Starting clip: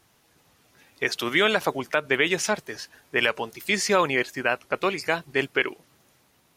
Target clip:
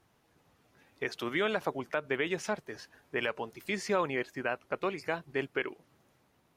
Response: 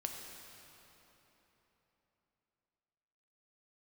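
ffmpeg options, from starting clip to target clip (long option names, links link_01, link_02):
-filter_complex "[0:a]highshelf=frequency=2400:gain=-10.5,asplit=2[link_01][link_02];[link_02]acompressor=threshold=-33dB:ratio=6,volume=-2.5dB[link_03];[link_01][link_03]amix=inputs=2:normalize=0,volume=-8.5dB"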